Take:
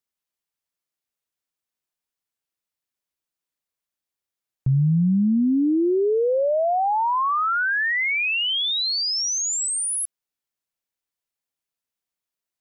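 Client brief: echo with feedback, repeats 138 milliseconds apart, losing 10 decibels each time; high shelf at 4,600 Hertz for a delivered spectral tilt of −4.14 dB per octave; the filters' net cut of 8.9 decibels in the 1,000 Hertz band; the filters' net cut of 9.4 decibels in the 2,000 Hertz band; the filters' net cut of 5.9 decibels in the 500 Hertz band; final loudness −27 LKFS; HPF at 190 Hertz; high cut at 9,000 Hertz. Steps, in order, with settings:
high-pass filter 190 Hz
low-pass filter 9,000 Hz
parametric band 500 Hz −5 dB
parametric band 1,000 Hz −7.5 dB
parametric band 2,000 Hz −8 dB
high-shelf EQ 4,600 Hz −7.5 dB
repeating echo 138 ms, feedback 32%, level −10 dB
level −1 dB

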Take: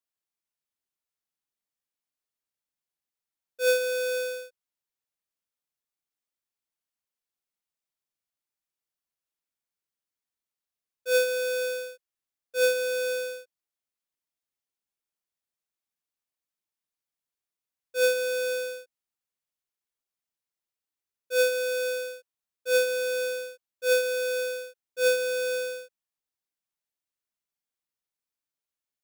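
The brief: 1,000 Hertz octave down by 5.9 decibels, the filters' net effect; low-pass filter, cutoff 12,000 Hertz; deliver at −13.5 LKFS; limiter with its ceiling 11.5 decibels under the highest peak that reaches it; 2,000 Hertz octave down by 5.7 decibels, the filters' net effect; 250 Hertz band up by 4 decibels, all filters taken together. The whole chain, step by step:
low-pass filter 12,000 Hz
parametric band 250 Hz +4.5 dB
parametric band 1,000 Hz −7.5 dB
parametric band 2,000 Hz −5 dB
level +20.5 dB
brickwall limiter −7.5 dBFS

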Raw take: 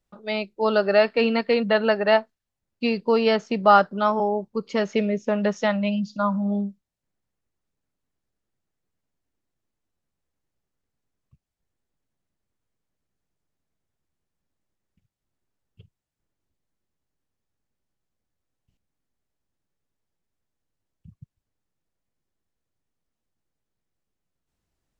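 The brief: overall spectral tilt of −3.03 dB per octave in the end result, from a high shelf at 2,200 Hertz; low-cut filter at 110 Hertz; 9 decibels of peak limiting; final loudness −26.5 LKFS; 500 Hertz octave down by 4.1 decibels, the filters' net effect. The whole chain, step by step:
high-pass filter 110 Hz
parametric band 500 Hz −6 dB
high-shelf EQ 2,200 Hz +7.5 dB
level −0.5 dB
brickwall limiter −13.5 dBFS

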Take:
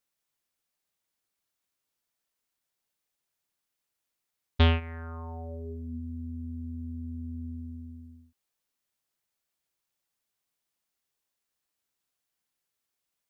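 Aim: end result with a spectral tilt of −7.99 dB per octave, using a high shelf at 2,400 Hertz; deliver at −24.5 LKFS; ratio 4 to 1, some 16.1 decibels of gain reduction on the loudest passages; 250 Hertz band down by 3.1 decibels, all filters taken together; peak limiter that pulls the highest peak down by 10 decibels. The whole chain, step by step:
parametric band 250 Hz −3 dB
high-shelf EQ 2,400 Hz −7.5 dB
downward compressor 4 to 1, threshold −39 dBFS
level +21.5 dB
brickwall limiter −17 dBFS

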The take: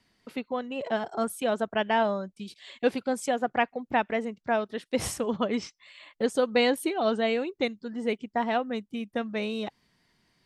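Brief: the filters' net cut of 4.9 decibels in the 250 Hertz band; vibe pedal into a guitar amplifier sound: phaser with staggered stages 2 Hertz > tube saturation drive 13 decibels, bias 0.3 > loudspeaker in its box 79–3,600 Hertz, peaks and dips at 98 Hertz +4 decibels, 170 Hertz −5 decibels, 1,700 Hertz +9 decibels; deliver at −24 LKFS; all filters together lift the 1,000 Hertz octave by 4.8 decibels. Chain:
parametric band 250 Hz −5 dB
parametric band 1,000 Hz +6.5 dB
phaser with staggered stages 2 Hz
tube saturation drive 13 dB, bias 0.3
loudspeaker in its box 79–3,600 Hz, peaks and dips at 98 Hz +4 dB, 170 Hz −5 dB, 1,700 Hz +9 dB
level +6.5 dB

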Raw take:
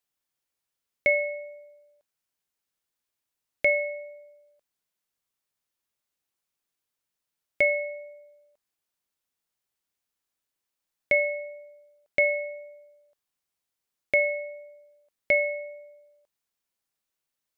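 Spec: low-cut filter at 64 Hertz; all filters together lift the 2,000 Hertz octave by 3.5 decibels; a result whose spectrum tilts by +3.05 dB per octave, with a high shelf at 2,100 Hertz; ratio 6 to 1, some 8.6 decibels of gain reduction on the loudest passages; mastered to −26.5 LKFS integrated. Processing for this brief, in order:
high-pass filter 64 Hz
parametric band 2,000 Hz +6.5 dB
high-shelf EQ 2,100 Hz −5 dB
downward compressor 6 to 1, threshold −24 dBFS
level +3.5 dB

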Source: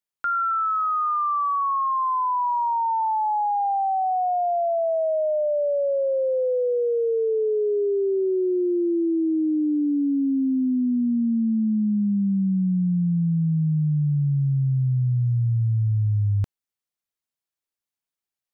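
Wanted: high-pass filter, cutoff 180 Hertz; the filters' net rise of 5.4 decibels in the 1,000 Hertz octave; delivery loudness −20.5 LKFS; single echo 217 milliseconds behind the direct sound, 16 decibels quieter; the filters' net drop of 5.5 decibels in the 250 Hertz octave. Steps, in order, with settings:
high-pass filter 180 Hz
parametric band 250 Hz −6 dB
parametric band 1,000 Hz +7 dB
single-tap delay 217 ms −16 dB
level +1 dB

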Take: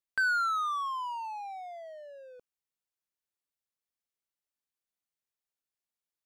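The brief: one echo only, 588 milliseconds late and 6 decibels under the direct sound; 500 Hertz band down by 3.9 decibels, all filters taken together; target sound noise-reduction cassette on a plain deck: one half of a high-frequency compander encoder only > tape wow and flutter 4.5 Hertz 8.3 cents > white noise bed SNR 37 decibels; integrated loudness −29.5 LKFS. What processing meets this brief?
parametric band 500 Hz −5.5 dB
single-tap delay 588 ms −6 dB
one half of a high-frequency compander encoder only
tape wow and flutter 4.5 Hz 8.3 cents
white noise bed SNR 37 dB
level +2.5 dB

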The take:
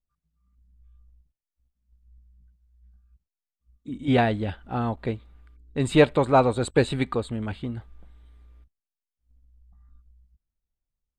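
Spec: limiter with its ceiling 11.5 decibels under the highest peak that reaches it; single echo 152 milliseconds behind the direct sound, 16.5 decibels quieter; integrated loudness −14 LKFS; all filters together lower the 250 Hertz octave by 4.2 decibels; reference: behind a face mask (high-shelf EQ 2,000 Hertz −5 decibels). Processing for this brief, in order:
parametric band 250 Hz −5 dB
brickwall limiter −17.5 dBFS
high-shelf EQ 2,000 Hz −5 dB
single-tap delay 152 ms −16.5 dB
level +16.5 dB

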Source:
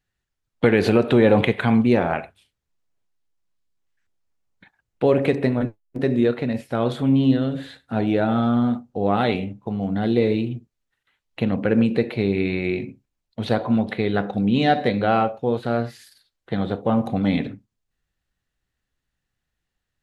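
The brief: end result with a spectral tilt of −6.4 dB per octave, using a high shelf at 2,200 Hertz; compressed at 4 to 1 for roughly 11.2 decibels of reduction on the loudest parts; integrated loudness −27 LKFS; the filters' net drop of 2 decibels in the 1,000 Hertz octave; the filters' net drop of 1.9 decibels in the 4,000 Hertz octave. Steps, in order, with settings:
parametric band 1,000 Hz −4 dB
high-shelf EQ 2,200 Hz +6 dB
parametric band 4,000 Hz −7.5 dB
downward compressor 4 to 1, threshold −26 dBFS
level +3.5 dB

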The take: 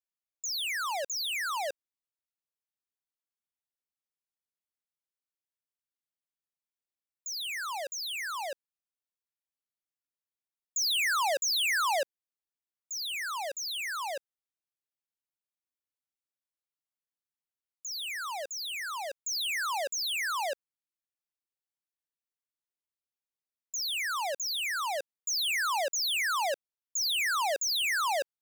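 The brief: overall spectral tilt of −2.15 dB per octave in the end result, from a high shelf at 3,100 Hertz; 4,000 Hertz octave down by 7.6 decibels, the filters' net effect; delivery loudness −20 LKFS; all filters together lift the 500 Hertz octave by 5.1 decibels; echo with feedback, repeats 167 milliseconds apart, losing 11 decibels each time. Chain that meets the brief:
parametric band 500 Hz +7 dB
high-shelf EQ 3,100 Hz −6 dB
parametric band 4,000 Hz −5.5 dB
repeating echo 167 ms, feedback 28%, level −11 dB
level +12 dB

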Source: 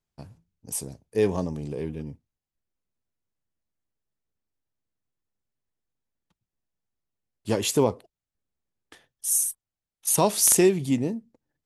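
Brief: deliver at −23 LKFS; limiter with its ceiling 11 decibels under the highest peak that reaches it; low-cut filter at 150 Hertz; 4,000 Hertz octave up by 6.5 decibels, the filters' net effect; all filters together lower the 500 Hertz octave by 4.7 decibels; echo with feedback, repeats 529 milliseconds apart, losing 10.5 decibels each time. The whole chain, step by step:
high-pass filter 150 Hz
parametric band 500 Hz −6.5 dB
parametric band 4,000 Hz +8.5 dB
brickwall limiter −13.5 dBFS
repeating echo 529 ms, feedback 30%, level −10.5 dB
level +4.5 dB

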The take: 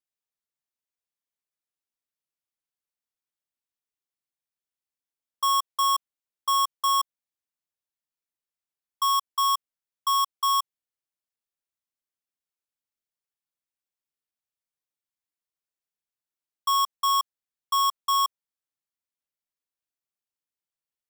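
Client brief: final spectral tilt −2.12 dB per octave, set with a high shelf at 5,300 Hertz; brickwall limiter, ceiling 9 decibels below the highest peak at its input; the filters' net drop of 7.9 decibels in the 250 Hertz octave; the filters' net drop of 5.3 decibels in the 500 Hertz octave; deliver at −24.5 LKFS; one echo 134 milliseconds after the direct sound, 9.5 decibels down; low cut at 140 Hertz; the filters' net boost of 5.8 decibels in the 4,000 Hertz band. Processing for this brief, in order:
high-pass filter 140 Hz
parametric band 250 Hz −8.5 dB
parametric band 500 Hz −5.5 dB
parametric band 4,000 Hz +6 dB
high-shelf EQ 5,300 Hz +5 dB
brickwall limiter −20.5 dBFS
single-tap delay 134 ms −9.5 dB
level +6.5 dB

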